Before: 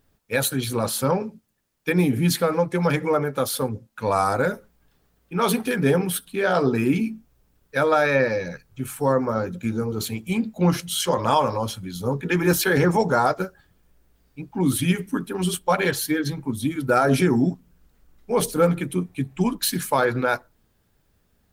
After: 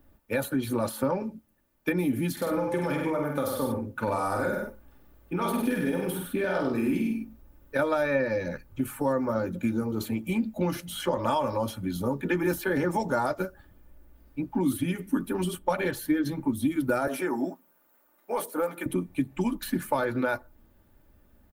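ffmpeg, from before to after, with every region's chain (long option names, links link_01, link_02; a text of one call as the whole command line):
ffmpeg -i in.wav -filter_complex "[0:a]asettb=1/sr,asplit=3[link_01][link_02][link_03];[link_01]atrim=end=2.324[link_04];[link_02]atrim=start=2.32:end=7.79,asetpts=PTS-STARTPTS,afade=type=in:duration=0.004:curve=qsin,afade=type=out:start_time=5.466:duration=0.004:curve=qsin,acompressor=threshold=-23dB:ratio=3:attack=3.2:release=140:knee=1:detection=peak,asplit=2[link_05][link_06];[link_06]adelay=48,volume=-5dB[link_07];[link_05][link_07]amix=inputs=2:normalize=0,atrim=end_sample=241227,aecho=1:1:97:0.531,atrim=end_sample=241227[link_08];[link_03]atrim=start=7.786[link_09];[link_04][link_08]acrossfade=duration=0.004:curve1=hsin:curve2=qsin[link_10];[link_10][link_09]acrossfade=duration=0.004:curve1=qsin:curve2=hsin,asettb=1/sr,asplit=3[link_11][link_12][link_13];[link_11]atrim=end=17.074[link_14];[link_12]atrim=start=17.07:end=18.86,asetpts=PTS-STARTPTS,afade=type=in:duration=0.004:curve=qsin,afade=type=out:start_time=1.786:duration=0.004:curve=qsin,highpass=830,acontrast=85,equalizer=frequency=3200:width=0.35:gain=-9.5[link_15];[link_13]atrim=start=18.856[link_16];[link_14][link_15]acrossfade=duration=0.004:curve1=hsin:curve2=qsin[link_17];[link_17][link_16]acrossfade=duration=0.004:curve1=qsin:curve2=hsin,equalizer=frequency=5500:width_type=o:width=2.5:gain=-12,acrossover=split=130|2400[link_18][link_19][link_20];[link_18]acompressor=threshold=-45dB:ratio=4[link_21];[link_19]acompressor=threshold=-32dB:ratio=4[link_22];[link_20]acompressor=threshold=-46dB:ratio=4[link_23];[link_21][link_22][link_23]amix=inputs=3:normalize=0,aecho=1:1:3.4:0.48,volume=5dB" out.wav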